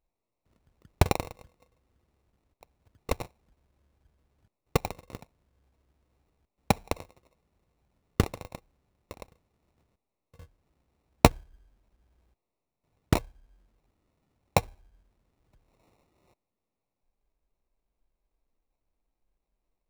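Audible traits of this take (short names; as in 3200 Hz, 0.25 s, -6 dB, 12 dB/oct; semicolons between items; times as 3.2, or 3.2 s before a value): aliases and images of a low sample rate 1600 Hz, jitter 0%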